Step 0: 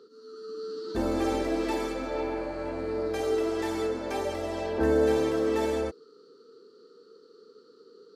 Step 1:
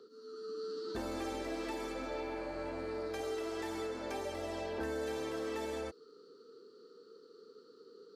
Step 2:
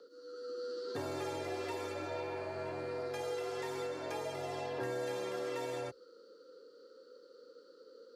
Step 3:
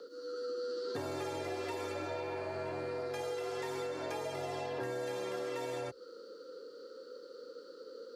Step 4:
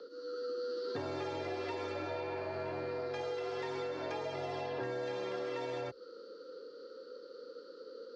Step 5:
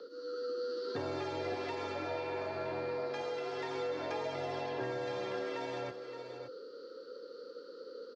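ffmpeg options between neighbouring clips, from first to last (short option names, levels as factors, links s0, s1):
-filter_complex "[0:a]acrossover=split=710|1900[s0][s1][s2];[s0]acompressor=threshold=0.0141:ratio=4[s3];[s1]acompressor=threshold=0.00708:ratio=4[s4];[s2]acompressor=threshold=0.00501:ratio=4[s5];[s3][s4][s5]amix=inputs=3:normalize=0,volume=0.708"
-af "afreqshift=52"
-af "acompressor=threshold=0.00562:ratio=3,volume=2.37"
-af "lowpass=f=5300:w=0.5412,lowpass=f=5300:w=1.3066"
-af "aecho=1:1:570:0.335,volume=1.12"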